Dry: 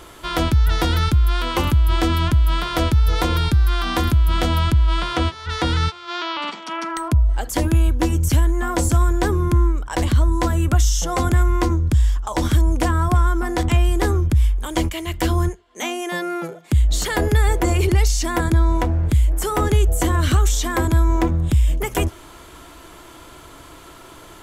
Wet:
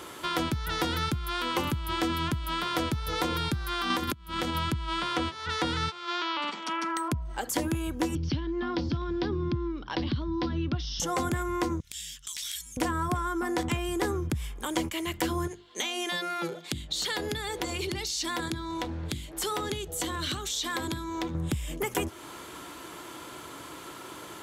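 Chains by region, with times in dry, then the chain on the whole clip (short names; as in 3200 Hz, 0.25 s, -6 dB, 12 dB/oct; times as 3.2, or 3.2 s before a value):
3.9–4.55 notch 700 Hz + negative-ratio compressor -21 dBFS, ratio -0.5
8.15–11 steep low-pass 5200 Hz 72 dB/oct + band shelf 1000 Hz -8 dB 2.7 oct + three-band squash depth 40%
11.8–12.77 inverse Chebyshev band-stop 130–550 Hz, stop band 80 dB + transient shaper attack -10 dB, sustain -4 dB + fast leveller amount 70%
15.47–21.35 bell 3900 Hz +12.5 dB 0.93 oct + compressor, threshold -22 dBFS + notches 50/100/150/200/250/300/350 Hz
whole clip: HPF 140 Hz 12 dB/oct; notch 670 Hz, Q 12; compressor 2:1, threshold -31 dBFS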